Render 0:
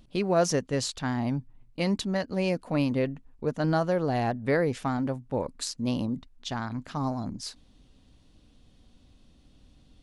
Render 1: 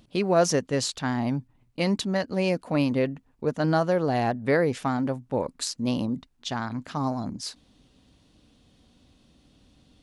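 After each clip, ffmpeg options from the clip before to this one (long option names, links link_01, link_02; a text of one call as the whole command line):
ffmpeg -i in.wav -af "highpass=frequency=110:poles=1,volume=3dB" out.wav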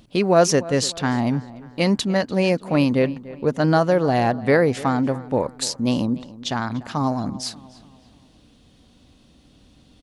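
ffmpeg -i in.wav -filter_complex "[0:a]asplit=2[link_01][link_02];[link_02]adelay=293,lowpass=frequency=3400:poles=1,volume=-18dB,asplit=2[link_03][link_04];[link_04]adelay=293,lowpass=frequency=3400:poles=1,volume=0.45,asplit=2[link_05][link_06];[link_06]adelay=293,lowpass=frequency=3400:poles=1,volume=0.45,asplit=2[link_07][link_08];[link_08]adelay=293,lowpass=frequency=3400:poles=1,volume=0.45[link_09];[link_01][link_03][link_05][link_07][link_09]amix=inputs=5:normalize=0,volume=5.5dB" out.wav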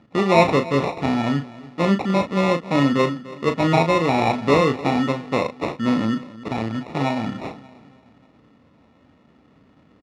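ffmpeg -i in.wav -filter_complex "[0:a]acrusher=samples=28:mix=1:aa=0.000001,highpass=110,lowpass=3400,asplit=2[link_01][link_02];[link_02]adelay=36,volume=-8dB[link_03];[link_01][link_03]amix=inputs=2:normalize=0" out.wav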